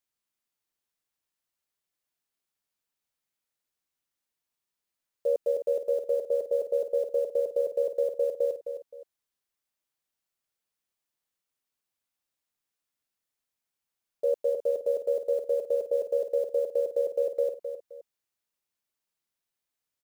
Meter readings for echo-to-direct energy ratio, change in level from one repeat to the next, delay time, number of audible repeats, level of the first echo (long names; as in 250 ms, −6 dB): −8.5 dB, −10.5 dB, 261 ms, 2, −9.0 dB